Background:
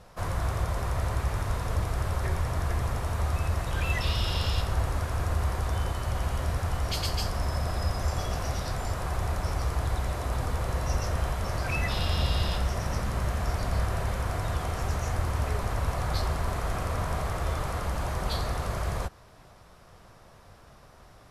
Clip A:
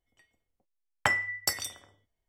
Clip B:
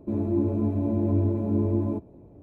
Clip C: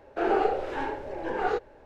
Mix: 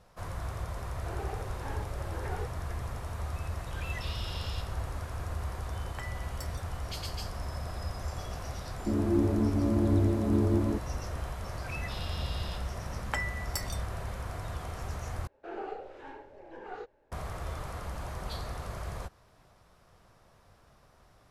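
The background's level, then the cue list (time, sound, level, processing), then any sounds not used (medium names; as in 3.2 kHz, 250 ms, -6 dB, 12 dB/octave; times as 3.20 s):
background -8 dB
0.88 s: add C -14.5 dB + gain riding
4.93 s: add A -18 dB
8.79 s: add B -2 dB
12.08 s: add A -7.5 dB
15.27 s: replace with C -15 dB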